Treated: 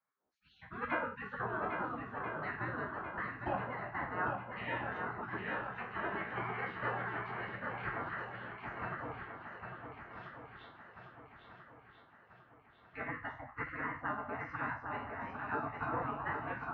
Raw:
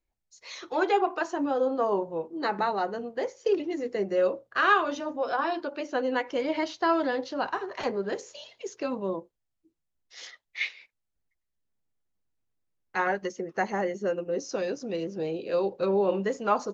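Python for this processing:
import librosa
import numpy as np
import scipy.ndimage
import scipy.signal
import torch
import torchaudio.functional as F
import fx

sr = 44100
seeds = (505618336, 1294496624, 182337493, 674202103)

p1 = fx.spec_trails(x, sr, decay_s=0.39)
p2 = scipy.signal.sosfilt(scipy.signal.butter(4, 1200.0, 'lowpass', fs=sr, output='sos'), p1)
p3 = fx.spec_gate(p2, sr, threshold_db=-30, keep='weak')
p4 = scipy.signal.sosfilt(scipy.signal.butter(2, 68.0, 'highpass', fs=sr, output='sos'), p3)
p5 = fx.low_shelf(p4, sr, hz=97.0, db=8.5)
p6 = p5 + fx.echo_swing(p5, sr, ms=1338, ratio=1.5, feedback_pct=45, wet_db=-5.5, dry=0)
y = F.gain(torch.from_numpy(p6), 14.5).numpy()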